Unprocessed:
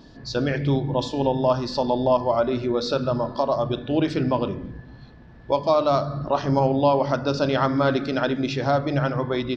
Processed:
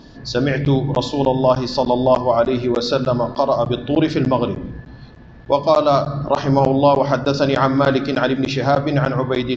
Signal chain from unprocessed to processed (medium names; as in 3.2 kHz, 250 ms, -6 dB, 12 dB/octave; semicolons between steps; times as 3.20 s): crackling interface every 0.30 s, samples 512, zero, from 0.65 s; trim +5.5 dB; Vorbis 64 kbps 16 kHz